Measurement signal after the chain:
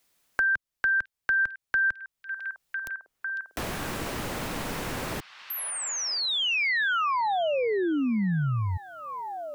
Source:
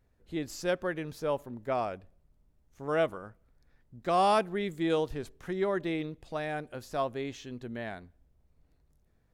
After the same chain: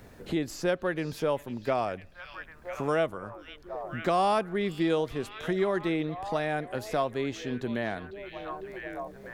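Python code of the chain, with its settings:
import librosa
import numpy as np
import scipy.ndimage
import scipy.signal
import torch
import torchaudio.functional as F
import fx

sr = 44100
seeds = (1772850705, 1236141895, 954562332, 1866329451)

y = fx.echo_stepped(x, sr, ms=501, hz=3500.0, octaves=-0.7, feedback_pct=70, wet_db=-12.0)
y = fx.band_squash(y, sr, depth_pct=70)
y = F.gain(torch.from_numpy(y), 3.0).numpy()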